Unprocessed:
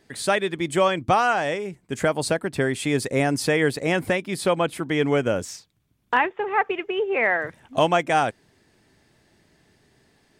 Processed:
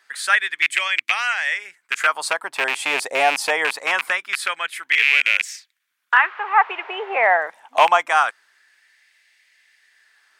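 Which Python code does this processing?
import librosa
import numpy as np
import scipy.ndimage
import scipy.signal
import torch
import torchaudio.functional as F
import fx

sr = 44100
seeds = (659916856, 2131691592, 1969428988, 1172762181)

y = fx.rattle_buzz(x, sr, strikes_db=-28.0, level_db=-12.0)
y = fx.dmg_noise_band(y, sr, seeds[0], low_hz=250.0, high_hz=2400.0, level_db=-45.0, at=(6.17, 7.26), fade=0.02)
y = fx.filter_lfo_highpass(y, sr, shape='sine', hz=0.24, low_hz=770.0, high_hz=2100.0, q=3.0)
y = F.gain(torch.from_numpy(y), 2.0).numpy()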